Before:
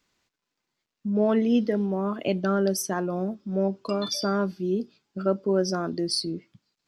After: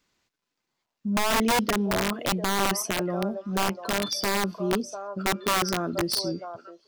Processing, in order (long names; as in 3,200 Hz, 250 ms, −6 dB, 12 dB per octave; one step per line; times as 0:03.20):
echo through a band-pass that steps 694 ms, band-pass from 800 Hz, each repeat 1.4 octaves, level −4 dB
wrap-around overflow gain 17.5 dB